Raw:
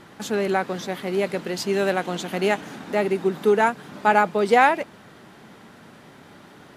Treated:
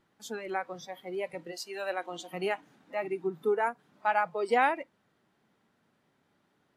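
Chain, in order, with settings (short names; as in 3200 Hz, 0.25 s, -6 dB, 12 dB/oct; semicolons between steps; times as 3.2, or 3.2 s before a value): 1.51–2.33 HPF 380 Hz -> 170 Hz 12 dB/oct; spectral noise reduction 16 dB; 3.17–3.79 dynamic EQ 3600 Hz, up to -5 dB, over -40 dBFS, Q 0.87; gain -9 dB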